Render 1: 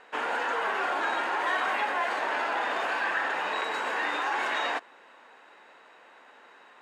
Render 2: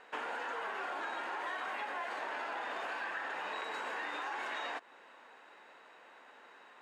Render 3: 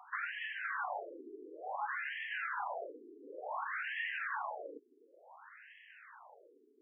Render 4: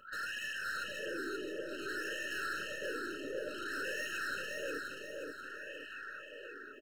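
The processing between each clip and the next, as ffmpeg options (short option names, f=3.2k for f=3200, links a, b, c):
-af "acompressor=threshold=-34dB:ratio=4,volume=-3.5dB"
-af "crystalizer=i=1.5:c=0,acompressor=mode=upward:threshold=-54dB:ratio=2.5,afftfilt=real='re*between(b*sr/1024,310*pow(2400/310,0.5+0.5*sin(2*PI*0.56*pts/sr))/1.41,310*pow(2400/310,0.5+0.5*sin(2*PI*0.56*pts/sr))*1.41)':imag='im*between(b*sr/1024,310*pow(2400/310,0.5+0.5*sin(2*PI*0.56*pts/sr))/1.41,310*pow(2400/310,0.5+0.5*sin(2*PI*0.56*pts/sr))*1.41)':win_size=1024:overlap=0.75,volume=4dB"
-af "aeval=exprs='(tanh(282*val(0)+0.1)-tanh(0.1))/282':c=same,aecho=1:1:529|1058|1587|2116|2645|3174:0.668|0.301|0.135|0.0609|0.0274|0.0123,afftfilt=real='re*eq(mod(floor(b*sr/1024/630),2),0)':imag='im*eq(mod(floor(b*sr/1024/630),2),0)':win_size=1024:overlap=0.75,volume=12dB"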